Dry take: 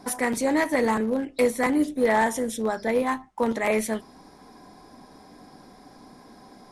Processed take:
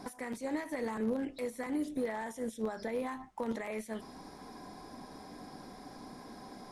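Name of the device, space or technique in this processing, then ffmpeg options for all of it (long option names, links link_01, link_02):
de-esser from a sidechain: -filter_complex "[0:a]asplit=2[link_01][link_02];[link_02]highpass=frequency=6900:poles=1,apad=whole_len=296116[link_03];[link_01][link_03]sidechaincompress=threshold=-53dB:ratio=4:attack=1:release=79"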